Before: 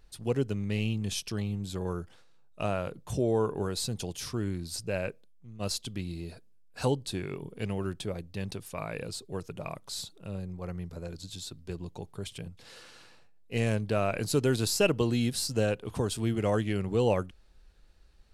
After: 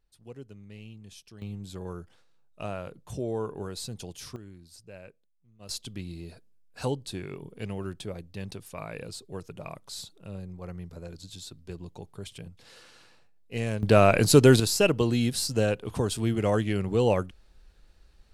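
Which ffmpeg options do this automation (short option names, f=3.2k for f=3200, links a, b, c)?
-af "asetnsamples=n=441:p=0,asendcmd='1.42 volume volume -4.5dB;4.36 volume volume -14.5dB;5.69 volume volume -2dB;13.83 volume volume 10dB;14.6 volume volume 2.5dB',volume=-15.5dB"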